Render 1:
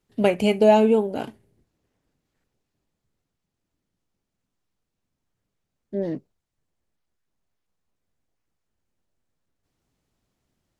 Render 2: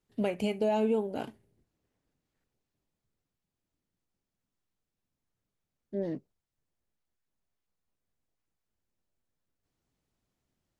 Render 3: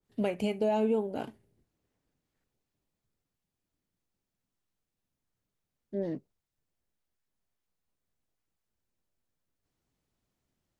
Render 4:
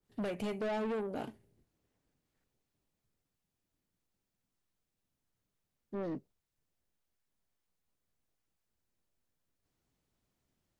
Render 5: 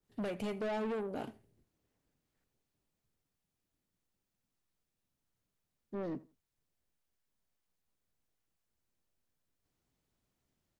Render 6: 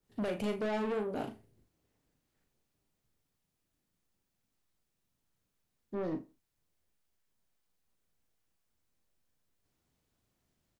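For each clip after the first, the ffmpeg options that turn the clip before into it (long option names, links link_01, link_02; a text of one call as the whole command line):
ffmpeg -i in.wav -af "alimiter=limit=-13dB:level=0:latency=1:release=258,volume=-6.5dB" out.wav
ffmpeg -i in.wav -af "adynamicequalizer=threshold=0.00708:dfrequency=1700:dqfactor=0.7:tfrequency=1700:tqfactor=0.7:attack=5:release=100:ratio=0.375:range=1.5:mode=cutabove:tftype=highshelf" out.wav
ffmpeg -i in.wav -af "asoftclip=type=tanh:threshold=-32.5dB" out.wav
ffmpeg -i in.wav -filter_complex "[0:a]asplit=2[link_01][link_02];[link_02]adelay=83,lowpass=frequency=4200:poles=1,volume=-21dB,asplit=2[link_03][link_04];[link_04]adelay=83,lowpass=frequency=4200:poles=1,volume=0.22[link_05];[link_01][link_03][link_05]amix=inputs=3:normalize=0,volume=-1dB" out.wav
ffmpeg -i in.wav -filter_complex "[0:a]asplit=2[link_01][link_02];[link_02]adelay=38,volume=-7.5dB[link_03];[link_01][link_03]amix=inputs=2:normalize=0,volume=2.5dB" out.wav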